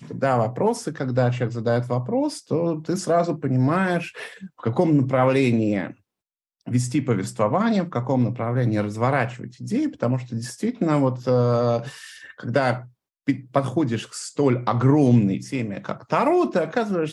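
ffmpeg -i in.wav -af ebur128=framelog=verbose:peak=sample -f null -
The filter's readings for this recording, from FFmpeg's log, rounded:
Integrated loudness:
  I:         -22.5 LUFS
  Threshold: -32.9 LUFS
Loudness range:
  LRA:         2.6 LU
  Threshold: -43.1 LUFS
  LRA low:   -24.1 LUFS
  LRA high:  -21.5 LUFS
Sample peak:
  Peak:       -4.5 dBFS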